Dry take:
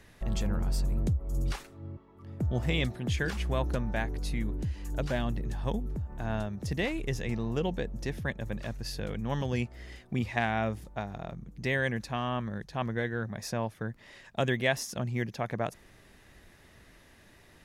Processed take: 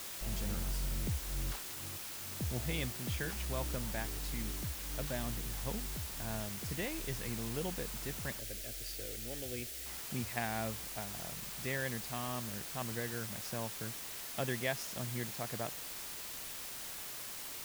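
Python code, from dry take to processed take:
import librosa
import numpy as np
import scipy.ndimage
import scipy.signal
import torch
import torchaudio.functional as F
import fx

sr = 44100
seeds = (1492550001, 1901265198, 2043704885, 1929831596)

y = fx.quant_dither(x, sr, seeds[0], bits=6, dither='triangular')
y = fx.fixed_phaser(y, sr, hz=410.0, stages=4, at=(8.39, 9.86))
y = y * 10.0 ** (-8.5 / 20.0)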